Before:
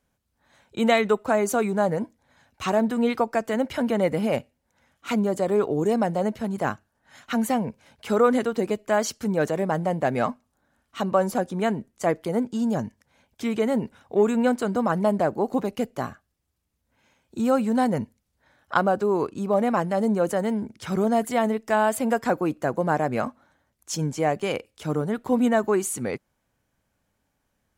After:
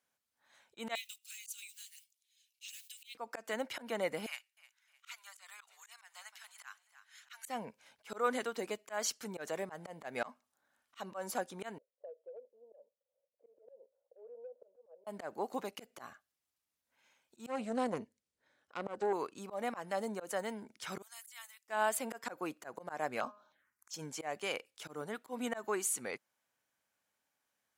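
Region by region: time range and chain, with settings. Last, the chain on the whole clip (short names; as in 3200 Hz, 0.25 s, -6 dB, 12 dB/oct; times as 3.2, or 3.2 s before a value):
0.95–3.15 block floating point 7-bit + elliptic high-pass 2700 Hz, stop band 80 dB + high shelf 8900 Hz +6 dB
4.26–7.48 Bessel high-pass 1800 Hz, order 6 + feedback echo 0.308 s, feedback 41%, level -19 dB
11.78–15.07 Butterworth band-pass 530 Hz, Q 5 + compressor 8:1, threshold -32 dBFS
17.46–19.13 LPF 10000 Hz 24 dB/oct + resonant low shelf 600 Hz +7 dB, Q 1.5 + tube stage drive 12 dB, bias 0.8
21.02–21.68 HPF 1000 Hz 24 dB/oct + differentiator
23.2–23.94 bell 1600 Hz +6 dB 1.9 oct + de-hum 207.1 Hz, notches 14 + envelope phaser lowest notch 440 Hz, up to 2000 Hz, full sweep at -34 dBFS
whole clip: HPF 1200 Hz 6 dB/oct; auto swell 0.146 s; gain -4.5 dB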